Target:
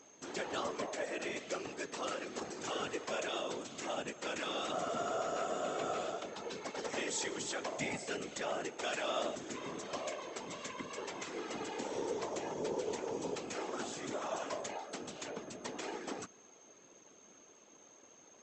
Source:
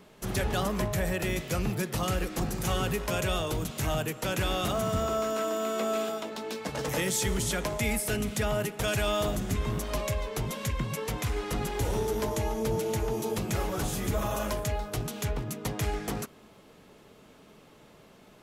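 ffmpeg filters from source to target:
-af "afftfilt=real='re*between(b*sr/4096,220,8100)':imag='im*between(b*sr/4096,220,8100)':win_size=4096:overlap=0.75,aeval=exprs='val(0)+0.002*sin(2*PI*6400*n/s)':c=same,afftfilt=real='hypot(re,im)*cos(2*PI*random(0))':imag='hypot(re,im)*sin(2*PI*random(1))':win_size=512:overlap=0.75,volume=-1dB"

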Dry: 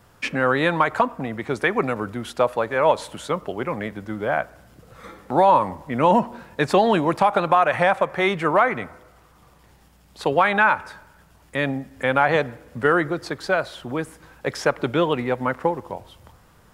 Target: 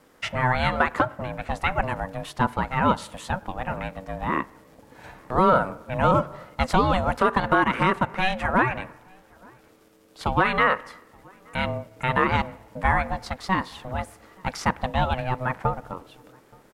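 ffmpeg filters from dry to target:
-filter_complex "[0:a]aeval=exprs='val(0)*sin(2*PI*380*n/s)':c=same,asplit=2[a][b];[b]adelay=874.6,volume=-28dB,highshelf=f=4k:g=-19.7[c];[a][c]amix=inputs=2:normalize=0"

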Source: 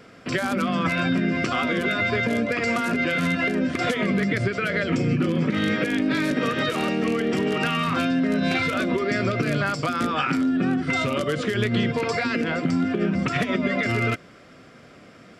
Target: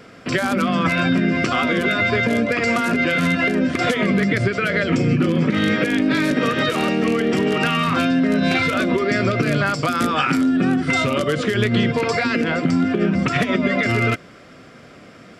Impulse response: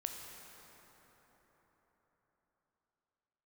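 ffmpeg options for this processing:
-filter_complex "[0:a]asettb=1/sr,asplit=3[a][b][c];[a]atrim=end=9.884[d];[b]atrim=start=9.88:end=11.01,asetpts=PTS-STARTPTS,afade=t=in:d=0.004:c=qsin,afade=t=out:st=1.126:d=0.004:c=qsin,highshelf=f=9.5k:g=11.5[e];[c]atrim=start=11.006[f];[d][e]acrossfade=d=0.004:c1=hsin:c2=qsin[g];[g][f]acrossfade=d=0.004:c1=qsin:c2=hsin,volume=4.5dB"

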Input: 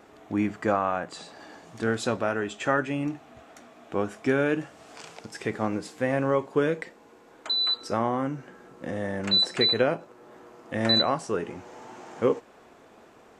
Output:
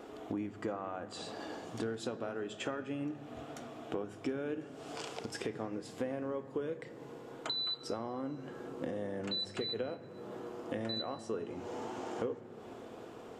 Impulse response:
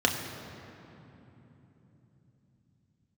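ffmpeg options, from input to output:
-filter_complex "[0:a]equalizer=f=400:w=1.8:g=4,acompressor=threshold=-37dB:ratio=10,asplit=2[a][b];[1:a]atrim=start_sample=2205,lowpass=5.7k[c];[b][c]afir=irnorm=-1:irlink=0,volume=-20dB[d];[a][d]amix=inputs=2:normalize=0"

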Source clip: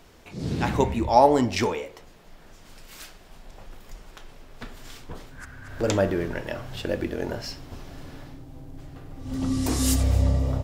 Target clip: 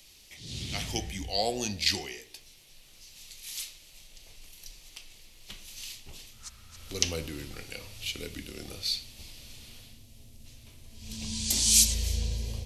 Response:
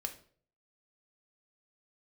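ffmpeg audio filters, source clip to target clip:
-filter_complex "[0:a]acrossover=split=140|1600[a][b][c];[a]acontrast=64[d];[d][b][c]amix=inputs=3:normalize=0,asetrate=37044,aresample=44100,aexciter=amount=13.2:drive=1.4:freq=2.2k,volume=-15dB"

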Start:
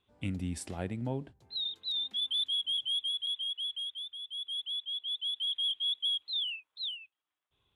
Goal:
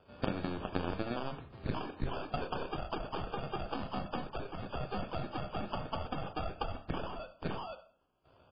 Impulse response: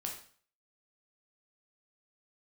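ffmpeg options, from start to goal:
-filter_complex "[0:a]aeval=exprs='if(lt(val(0),0),0.447*val(0),val(0))':c=same,highpass=58,alimiter=level_in=9.5dB:limit=-24dB:level=0:latency=1:release=157,volume=-9.5dB,acompressor=threshold=-48dB:ratio=6,aeval=exprs='0.0188*(cos(1*acos(clip(val(0)/0.0188,-1,1)))-cos(1*PI/2))+0.00422*(cos(7*acos(clip(val(0)/0.0188,-1,1)))-cos(7*PI/2))':c=same,atempo=0.91,acrusher=samples=22:mix=1:aa=0.000001,aecho=1:1:98|196:0.0794|0.0127,asplit=2[a][b];[1:a]atrim=start_sample=2205,highshelf=f=3.6k:g=-11.5[c];[b][c]afir=irnorm=-1:irlink=0,volume=1dB[d];[a][d]amix=inputs=2:normalize=0,volume=16dB" -ar 11025 -c:a libmp3lame -b:a 16k

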